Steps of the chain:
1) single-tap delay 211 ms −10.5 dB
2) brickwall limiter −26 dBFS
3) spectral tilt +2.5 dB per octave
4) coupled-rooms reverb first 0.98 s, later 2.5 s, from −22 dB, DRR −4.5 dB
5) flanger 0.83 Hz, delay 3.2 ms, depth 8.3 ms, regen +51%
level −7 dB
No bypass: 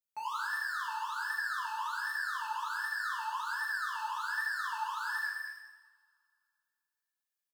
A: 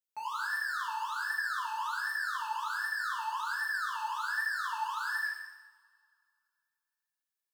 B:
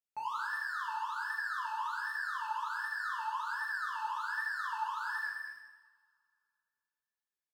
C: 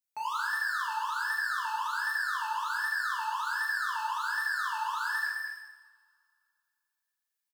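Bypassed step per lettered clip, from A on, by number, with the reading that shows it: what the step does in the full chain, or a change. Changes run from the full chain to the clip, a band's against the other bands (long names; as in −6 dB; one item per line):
1, change in integrated loudness +1.5 LU
3, 8 kHz band −5.5 dB
5, change in integrated loudness +4.0 LU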